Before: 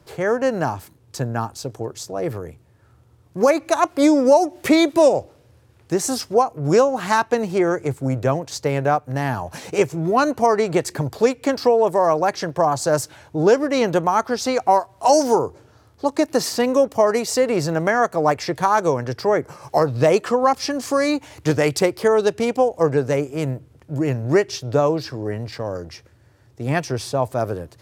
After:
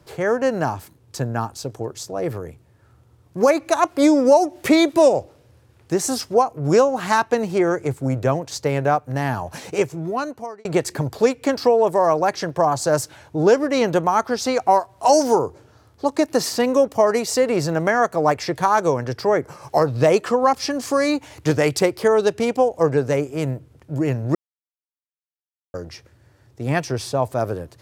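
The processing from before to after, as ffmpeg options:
ffmpeg -i in.wav -filter_complex "[0:a]asplit=4[link_01][link_02][link_03][link_04];[link_01]atrim=end=10.65,asetpts=PTS-STARTPTS,afade=type=out:start_time=9.57:duration=1.08[link_05];[link_02]atrim=start=10.65:end=24.35,asetpts=PTS-STARTPTS,afade=type=in:duration=0.004:curve=hsin,afade=type=out:start_time=13.696:duration=0.004:curve=hsin[link_06];[link_03]atrim=start=24.35:end=25.74,asetpts=PTS-STARTPTS,volume=0[link_07];[link_04]atrim=start=25.74,asetpts=PTS-STARTPTS,afade=type=in:duration=0.004:curve=hsin[link_08];[link_05][link_06][link_07][link_08]concat=n=4:v=0:a=1" out.wav

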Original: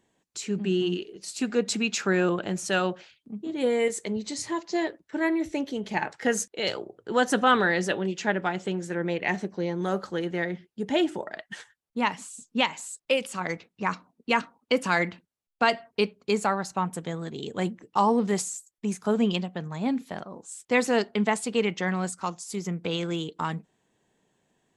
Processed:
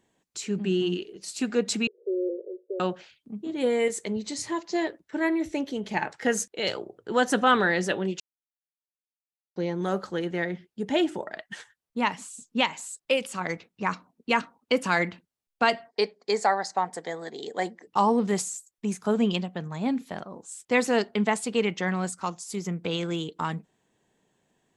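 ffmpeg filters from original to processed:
ffmpeg -i in.wav -filter_complex "[0:a]asettb=1/sr,asplit=3[link_01][link_02][link_03];[link_01]atrim=end=1.874[link_04];[link_02]atrim=start=1.87:end=2.8,asetpts=PTS-STARTPTS,afade=type=in:duration=0.004:curve=qsin,afade=type=out:start_time=0.926:duration=0.004:curve=qsin,asuperpass=centerf=440:order=8:qfactor=2.5[link_05];[link_03]atrim=start=2.796[link_06];[link_04][link_05]acrossfade=duration=0.004:curve1=hsin:curve2=qsin[link_07];[link_07][link_06]acrossfade=duration=0.004:curve1=qsin:curve2=hsin,asettb=1/sr,asplit=3[link_08][link_09][link_10];[link_08]atrim=end=15.884[link_11];[link_09]atrim=start=15.88:end=17.87,asetpts=PTS-STARTPTS,afade=type=in:duration=0.004:curve=qsin,afade=type=out:start_time=1.986:duration=0.004:curve=qsin,highpass=360,equalizer=frequency=460:width_type=q:width=4:gain=3,equalizer=frequency=740:width_type=q:width=4:gain=8,equalizer=frequency=1300:width_type=q:width=4:gain=-5,equalizer=frequency=1900:width_type=q:width=4:gain=9,equalizer=frequency=2700:width_type=q:width=4:gain=-10,equalizer=frequency=4800:width_type=q:width=4:gain=8,lowpass=frequency=8800:width=0.5412,lowpass=frequency=8800:width=1.3066[link_12];[link_10]atrim=start=17.866[link_13];[link_11][link_12]acrossfade=duration=0.004:curve1=hsin:curve2=qsin[link_14];[link_14][link_13]acrossfade=duration=0.004:curve1=qsin:curve2=hsin,asplit=3[link_15][link_16][link_17];[link_15]atrim=end=8.2,asetpts=PTS-STARTPTS,afade=type=out:start_time=8.196:duration=0.004:curve=hsin[link_18];[link_16]atrim=start=8.2:end=9.56,asetpts=PTS-STARTPTS,volume=0[link_19];[link_17]atrim=start=9.56,asetpts=PTS-STARTPTS,afade=type=in:duration=0.004:curve=hsin[link_20];[link_18][link_19][link_20]concat=n=3:v=0:a=1" out.wav

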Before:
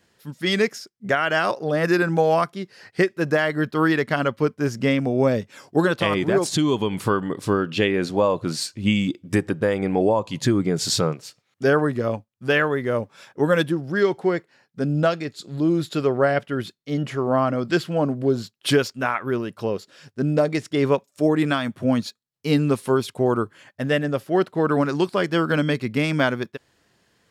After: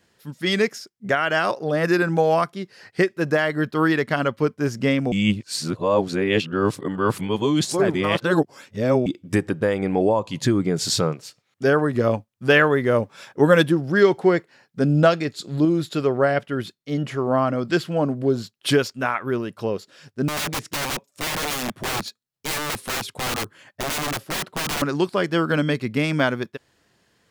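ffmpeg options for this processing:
ffmpeg -i in.wav -filter_complex "[0:a]asettb=1/sr,asplit=3[link_01][link_02][link_03];[link_01]atrim=end=20.284[link_04];[link_02]atrim=start=20.28:end=24.82,asetpts=PTS-STARTPTS,afade=type=in:duration=0.004:curve=qsin,afade=type=out:start_time=4.536:duration=0.004:curve=qsin,aeval=exprs='(mod(11.2*val(0)+1,2)-1)/11.2':channel_layout=same[link_05];[link_03]atrim=start=24.816[link_06];[link_04][link_05]acrossfade=duration=0.004:curve1=hsin:curve2=qsin[link_07];[link_07][link_06]acrossfade=duration=0.004:curve1=qsin:curve2=hsin,asplit=5[link_08][link_09][link_10][link_11][link_12];[link_08]atrim=end=5.122[link_13];[link_09]atrim=start=5.118:end=9.062,asetpts=PTS-STARTPTS,areverse[link_14];[link_10]atrim=start=9.058:end=11.942[link_15];[link_11]atrim=start=11.938:end=15.652,asetpts=PTS-STARTPTS,volume=4dB[link_16];[link_12]atrim=start=15.648[link_17];[link_13][link_14]acrossfade=duration=0.004:curve1=hsin:curve2=hsin[link_18];[link_18][link_15]acrossfade=duration=0.004:curve1=hsin:curve2=hsin[link_19];[link_19][link_16]acrossfade=duration=0.004:curve1=hsin:curve2=hsin[link_20];[link_20][link_17]acrossfade=duration=0.004:curve1=hsin:curve2=hsin" out.wav

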